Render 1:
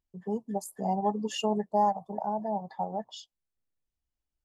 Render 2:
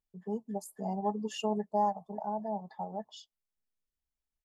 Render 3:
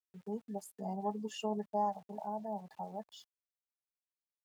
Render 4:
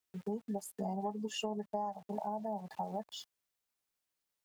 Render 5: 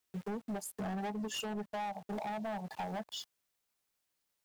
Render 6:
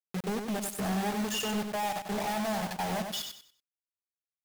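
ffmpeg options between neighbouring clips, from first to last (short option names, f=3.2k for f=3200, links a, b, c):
-af "aecho=1:1:4.7:0.36,volume=-6dB"
-af "aeval=exprs='val(0)*gte(abs(val(0)),0.0015)':c=same,highpass=56,volume=-4.5dB"
-af "acompressor=threshold=-43dB:ratio=6,volume=8.5dB"
-af "asoftclip=type=hard:threshold=-39dB,volume=4dB"
-filter_complex "[0:a]acrusher=bits=6:mix=0:aa=0.000001,asplit=2[a][b];[b]aecho=0:1:95|190|285|380:0.501|0.145|0.0421|0.0122[c];[a][c]amix=inputs=2:normalize=0,volume=6dB"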